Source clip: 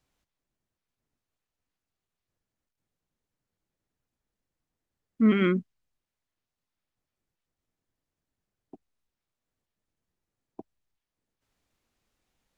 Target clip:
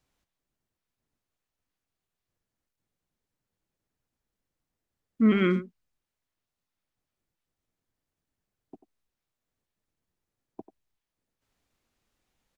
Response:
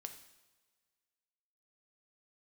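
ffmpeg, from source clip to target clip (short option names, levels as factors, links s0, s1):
-filter_complex "[0:a]asplit=2[s0][s1];[s1]adelay=90,highpass=300,lowpass=3400,asoftclip=type=hard:threshold=0.0841,volume=0.251[s2];[s0][s2]amix=inputs=2:normalize=0"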